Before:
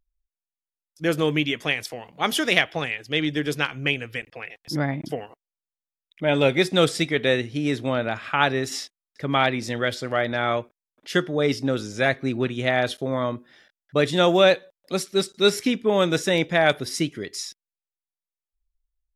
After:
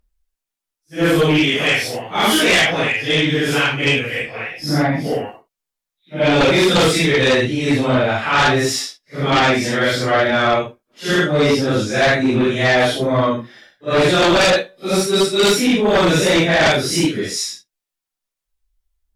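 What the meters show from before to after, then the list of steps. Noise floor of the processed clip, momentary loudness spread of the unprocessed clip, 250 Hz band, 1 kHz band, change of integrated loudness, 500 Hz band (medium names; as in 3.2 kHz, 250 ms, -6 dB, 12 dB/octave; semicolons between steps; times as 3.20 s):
-84 dBFS, 11 LU, +8.0 dB, +8.0 dB, +7.5 dB, +6.5 dB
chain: phase randomisation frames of 200 ms; sine folder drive 11 dB, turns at -5 dBFS; trim -4.5 dB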